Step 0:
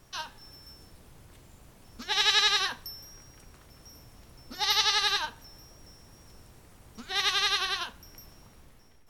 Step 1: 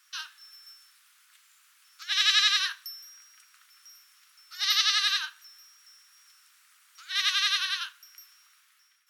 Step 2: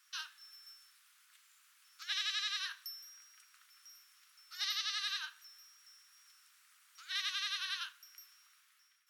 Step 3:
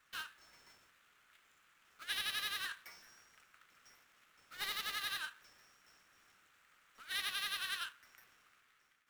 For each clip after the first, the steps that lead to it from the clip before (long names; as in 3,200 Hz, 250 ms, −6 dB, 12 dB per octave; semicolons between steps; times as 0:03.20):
elliptic high-pass filter 1,300 Hz, stop band 80 dB; level +1.5 dB
downward compressor 5 to 1, threshold −28 dBFS, peak gain reduction 10.5 dB; level −5.5 dB
running median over 9 samples; level +3 dB